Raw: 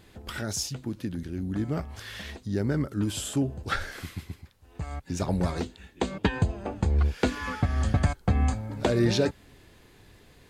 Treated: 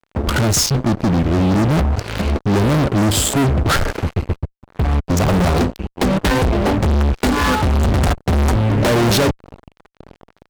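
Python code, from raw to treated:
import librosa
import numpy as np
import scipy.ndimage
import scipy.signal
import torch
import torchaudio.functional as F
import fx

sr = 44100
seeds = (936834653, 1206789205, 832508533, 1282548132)

y = fx.wiener(x, sr, points=25)
y = fx.fuzz(y, sr, gain_db=43.0, gate_db=-49.0)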